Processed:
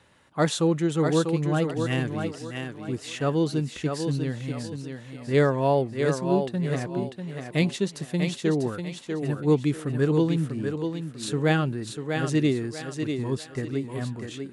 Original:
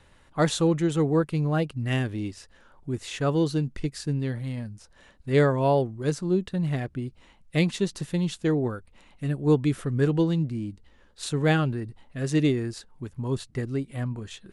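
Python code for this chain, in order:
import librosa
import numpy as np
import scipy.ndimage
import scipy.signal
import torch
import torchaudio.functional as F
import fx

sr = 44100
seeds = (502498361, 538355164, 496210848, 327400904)

p1 = scipy.signal.sosfilt(scipy.signal.butter(2, 110.0, 'highpass', fs=sr, output='sos'), x)
y = p1 + fx.echo_thinned(p1, sr, ms=644, feedback_pct=34, hz=180.0, wet_db=-5, dry=0)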